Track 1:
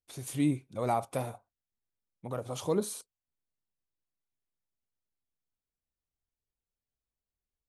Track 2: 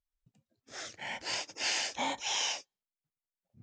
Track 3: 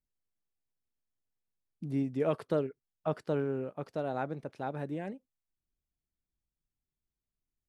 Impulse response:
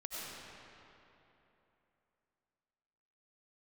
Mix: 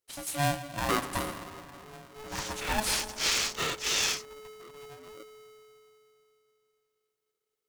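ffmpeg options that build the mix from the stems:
-filter_complex "[0:a]volume=1dB,asplit=2[a][b];[b]volume=-8.5dB[c];[1:a]asubboost=boost=7.5:cutoff=94,adelay=1600,volume=2dB[d];[2:a]alimiter=level_in=4.5dB:limit=-24dB:level=0:latency=1,volume=-4.5dB,aeval=exprs='max(val(0),0)':c=same,asplit=2[e][f];[f]afreqshift=-2.7[g];[e][g]amix=inputs=2:normalize=1,volume=-5.5dB,asplit=3[h][i][j];[i]volume=-11.5dB[k];[j]apad=whole_len=338927[l];[a][l]sidechaincompress=threshold=-53dB:ratio=8:attack=36:release=148[m];[3:a]atrim=start_sample=2205[n];[c][k]amix=inputs=2:normalize=0[o];[o][n]afir=irnorm=-1:irlink=0[p];[m][d][h][p]amix=inputs=4:normalize=0,tiltshelf=f=1.2k:g=-3.5,aeval=exprs='val(0)*sgn(sin(2*PI*430*n/s))':c=same"

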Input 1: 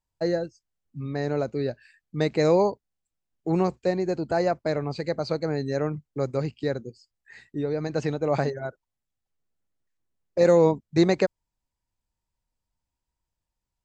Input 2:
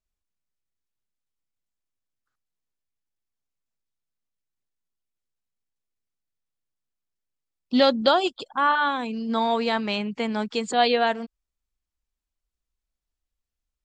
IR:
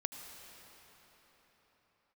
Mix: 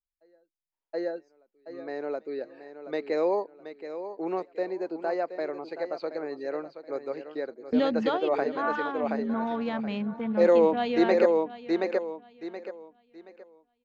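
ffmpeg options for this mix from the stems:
-filter_complex "[0:a]highpass=f=300:w=0.5412,highpass=f=300:w=1.3066,volume=-1.5dB,asplit=2[a][b];[b]volume=-3.5dB[c];[1:a]afwtdn=0.0158,bass=f=250:g=13,treble=f=4k:g=-3,volume=-9.5dB,asplit=3[d][e][f];[e]volume=-15dB[g];[f]apad=whole_len=610609[h];[a][h]sidechaingate=range=-35dB:threshold=-49dB:ratio=16:detection=peak[i];[c][g]amix=inputs=2:normalize=0,aecho=0:1:725|1450|2175|2900:1|0.28|0.0784|0.022[j];[i][d][j]amix=inputs=3:normalize=0,lowpass=3.1k"

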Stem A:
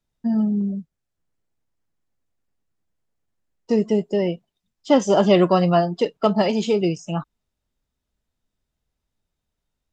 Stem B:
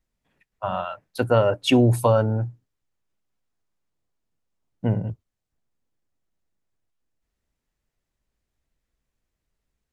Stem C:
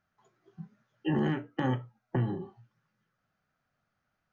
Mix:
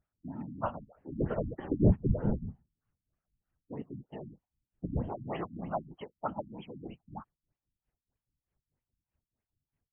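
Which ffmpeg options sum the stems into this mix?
-filter_complex "[0:a]lowshelf=f=650:t=q:w=3:g=-6,volume=-9dB[a];[1:a]tremolo=f=4.8:d=0.93,volume=3dB[b];[2:a]volume=-7dB[c];[a][b][c]amix=inputs=3:normalize=0,afftfilt=real='hypot(re,im)*cos(2*PI*random(0))':imag='hypot(re,im)*sin(2*PI*random(1))':win_size=512:overlap=0.75,afftfilt=real='re*lt(b*sr/1024,280*pow(3400/280,0.5+0.5*sin(2*PI*3.2*pts/sr)))':imag='im*lt(b*sr/1024,280*pow(3400/280,0.5+0.5*sin(2*PI*3.2*pts/sr)))':win_size=1024:overlap=0.75"

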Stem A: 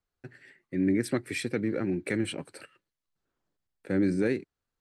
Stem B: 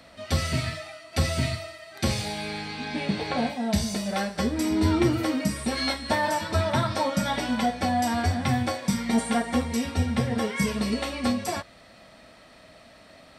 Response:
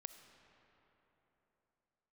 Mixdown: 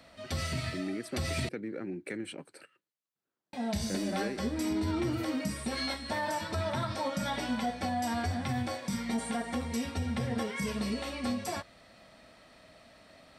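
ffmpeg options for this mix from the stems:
-filter_complex "[0:a]highpass=160,acompressor=threshold=-29dB:ratio=2,volume=-6dB[a];[1:a]alimiter=limit=-18dB:level=0:latency=1:release=53,volume=-5.5dB,asplit=3[b][c][d];[b]atrim=end=1.49,asetpts=PTS-STARTPTS,afade=t=out:st=1.486:d=0.004:c=hsin[e];[c]atrim=start=1.49:end=3.53,asetpts=PTS-STARTPTS,volume=0[f];[d]atrim=start=3.53,asetpts=PTS-STARTPTS,afade=t=in:d=0.004:c=hsin[g];[e][f][g]concat=n=3:v=0:a=1[h];[a][h]amix=inputs=2:normalize=0"

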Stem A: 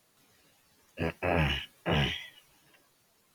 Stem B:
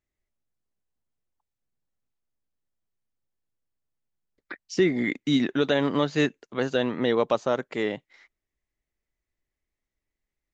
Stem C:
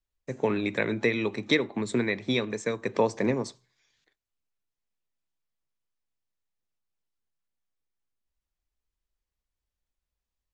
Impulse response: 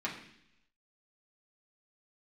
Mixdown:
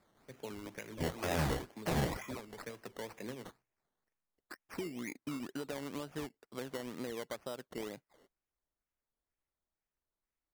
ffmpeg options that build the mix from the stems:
-filter_complex "[0:a]alimiter=limit=-18dB:level=0:latency=1:release=112,volume=-3.5dB[a];[1:a]acompressor=threshold=-26dB:ratio=10,volume=-11dB[b];[2:a]agate=range=-6dB:threshold=-51dB:ratio=16:detection=peak,aemphasis=mode=production:type=75fm,alimiter=limit=-14.5dB:level=0:latency=1:release=178,volume=-17dB[c];[a][b][c]amix=inputs=3:normalize=0,acrusher=samples=14:mix=1:aa=0.000001:lfo=1:lforange=8.4:lforate=2.1"

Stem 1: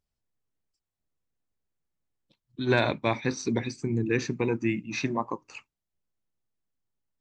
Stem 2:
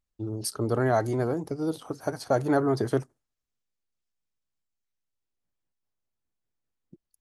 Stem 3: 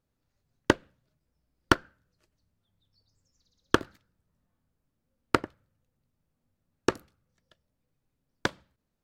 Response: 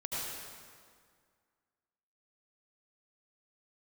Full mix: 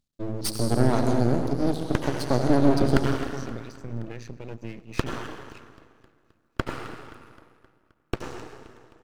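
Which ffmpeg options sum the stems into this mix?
-filter_complex "[0:a]alimiter=limit=-20dB:level=0:latency=1:release=264,volume=-5.5dB,asplit=3[a][b][c];[b]volume=-21dB[d];[c]volume=-23.5dB[e];[1:a]equalizer=f=250:t=o:w=1:g=12,equalizer=f=2k:t=o:w=1:g=-7,equalizer=f=4k:t=o:w=1:g=12,equalizer=f=8k:t=o:w=1:g=5,volume=-3dB,asplit=2[f][g];[g]volume=-5dB[h];[2:a]adelay=1250,volume=0dB,asplit=3[i][j][k];[j]volume=-7dB[l];[k]volume=-20dB[m];[f][i]amix=inputs=2:normalize=0,aeval=exprs='max(val(0),0)':c=same,alimiter=limit=-12dB:level=0:latency=1:release=167,volume=0dB[n];[3:a]atrim=start_sample=2205[o];[d][h][l]amix=inputs=3:normalize=0[p];[p][o]afir=irnorm=-1:irlink=0[q];[e][m]amix=inputs=2:normalize=0,aecho=0:1:262|524|786|1048|1310|1572|1834|2096|2358:1|0.59|0.348|0.205|0.121|0.0715|0.0422|0.0249|0.0147[r];[a][n][q][r]amix=inputs=4:normalize=0,equalizer=f=130:t=o:w=0.78:g=7,aeval=exprs='max(val(0),0)':c=same"

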